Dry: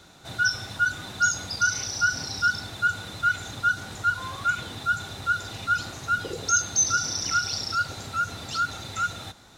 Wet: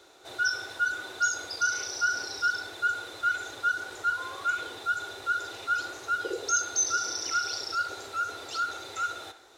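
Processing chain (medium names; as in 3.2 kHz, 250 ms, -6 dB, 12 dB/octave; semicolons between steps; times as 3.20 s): resonant low shelf 270 Hz -12 dB, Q 3; on a send: band-passed feedback delay 61 ms, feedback 55%, band-pass 1.4 kHz, level -9 dB; on the sum: trim -4.5 dB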